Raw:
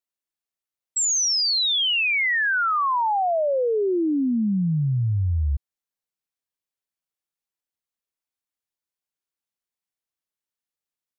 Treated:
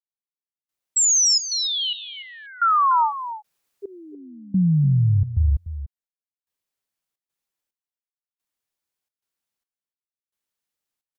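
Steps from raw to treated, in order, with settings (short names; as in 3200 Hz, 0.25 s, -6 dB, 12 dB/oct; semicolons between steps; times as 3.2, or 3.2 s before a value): 3.08–3.87 room tone, crossfade 0.10 s; step gate ".....xxxxx.xxx" 109 bpm -24 dB; 1.48–2.17 resonator 100 Hz, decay 1.7 s, harmonics all, mix 60%; echo 0.294 s -12.5 dB; gain +4.5 dB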